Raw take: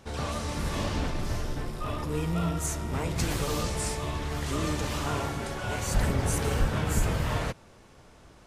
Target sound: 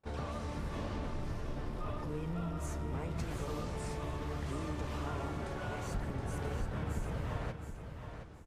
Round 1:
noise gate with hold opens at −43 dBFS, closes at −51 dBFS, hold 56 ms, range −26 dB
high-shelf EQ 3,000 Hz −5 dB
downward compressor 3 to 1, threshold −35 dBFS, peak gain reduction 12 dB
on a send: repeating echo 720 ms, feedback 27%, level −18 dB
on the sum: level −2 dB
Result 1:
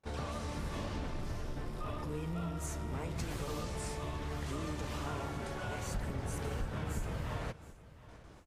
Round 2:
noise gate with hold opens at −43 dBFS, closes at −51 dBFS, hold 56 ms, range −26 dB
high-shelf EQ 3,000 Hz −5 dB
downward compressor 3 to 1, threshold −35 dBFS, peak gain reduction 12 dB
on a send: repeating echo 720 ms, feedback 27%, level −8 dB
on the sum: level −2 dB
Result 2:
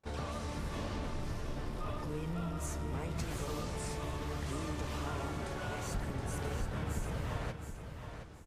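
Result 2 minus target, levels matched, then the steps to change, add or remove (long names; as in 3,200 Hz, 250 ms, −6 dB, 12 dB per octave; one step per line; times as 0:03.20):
8,000 Hz band +5.5 dB
change: high-shelf EQ 3,000 Hz −12 dB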